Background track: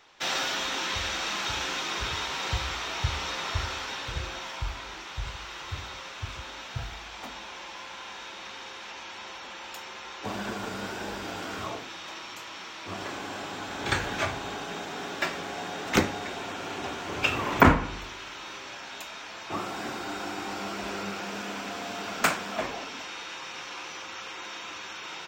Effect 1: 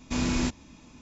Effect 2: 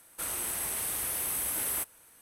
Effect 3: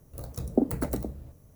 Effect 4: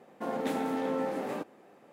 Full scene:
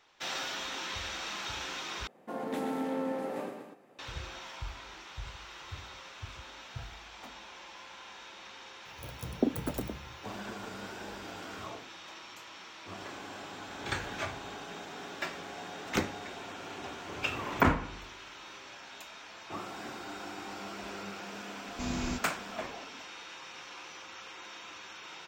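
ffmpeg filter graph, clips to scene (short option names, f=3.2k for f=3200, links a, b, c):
-filter_complex "[0:a]volume=-7.5dB[a];[4:a]aecho=1:1:128.3|244.9:0.447|0.282[b];[3:a]highpass=66[c];[a]asplit=2[d][e];[d]atrim=end=2.074[f];[b]atrim=end=1.92,asetpts=PTS-STARTPTS,volume=-4dB[g];[e]atrim=start=3.986[h];[c]atrim=end=1.55,asetpts=PTS-STARTPTS,volume=-4.5dB,afade=t=in:d=0.004:c=hsin,afade=t=out:st=1.546:d=0.004:c=hsin,adelay=8850[i];[1:a]atrim=end=1.01,asetpts=PTS-STARTPTS,volume=-8dB,afade=t=in:d=0.004:c=hsin,afade=t=out:st=1.006:d=0.004:c=hsin,adelay=21680[j];[f][g]acrossfade=d=0.004:c1=hsin:c2=hsin[k];[k][h]acrossfade=d=0.004:c1=hsin:c2=hsin[l];[l][i][j]amix=inputs=3:normalize=0"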